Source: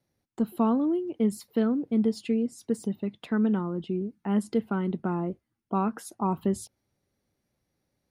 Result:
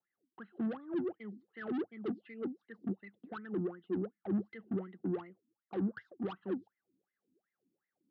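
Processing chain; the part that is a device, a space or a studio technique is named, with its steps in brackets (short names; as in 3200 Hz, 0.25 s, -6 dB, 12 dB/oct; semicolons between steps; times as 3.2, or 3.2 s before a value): wah-wah guitar rig (wah 2.7 Hz 250–2100 Hz, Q 17; tube stage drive 48 dB, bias 0.2; speaker cabinet 100–3500 Hz, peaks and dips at 110 Hz +6 dB, 190 Hz +10 dB, 350 Hz +6 dB, 610 Hz -7 dB, 970 Hz -10 dB, 2300 Hz -10 dB); gain +12.5 dB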